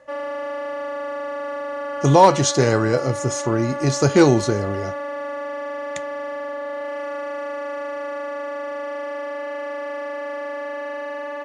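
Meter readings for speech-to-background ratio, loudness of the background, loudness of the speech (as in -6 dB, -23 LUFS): 10.5 dB, -29.0 LUFS, -18.5 LUFS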